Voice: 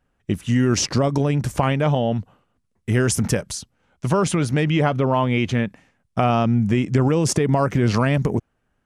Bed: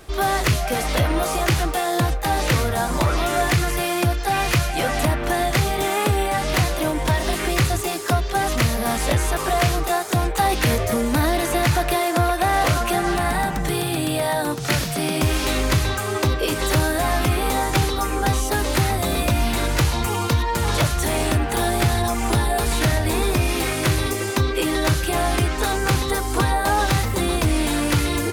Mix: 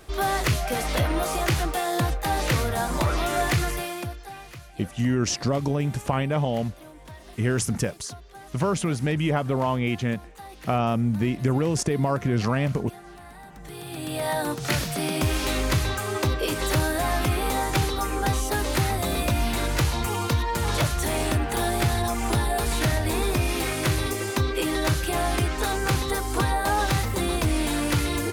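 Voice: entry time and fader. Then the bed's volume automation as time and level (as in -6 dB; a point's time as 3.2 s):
4.50 s, -5.0 dB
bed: 3.66 s -4 dB
4.52 s -23.5 dB
13.41 s -23.5 dB
14.3 s -4 dB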